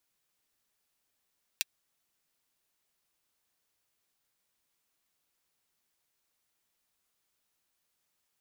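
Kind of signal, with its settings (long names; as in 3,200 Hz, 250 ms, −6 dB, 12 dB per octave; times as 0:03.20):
closed synth hi-hat, high-pass 2,600 Hz, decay 0.03 s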